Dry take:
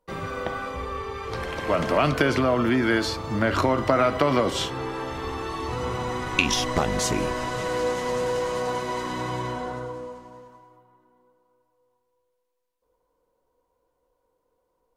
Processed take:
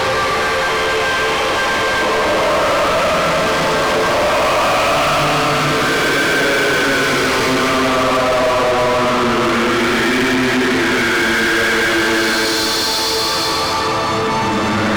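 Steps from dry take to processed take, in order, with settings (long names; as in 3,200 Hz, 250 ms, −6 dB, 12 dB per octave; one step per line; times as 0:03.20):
extreme stretch with random phases 7.5×, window 0.25 s, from 0:01.37
mid-hump overdrive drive 35 dB, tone 5,100 Hz, clips at −7 dBFS
level −1.5 dB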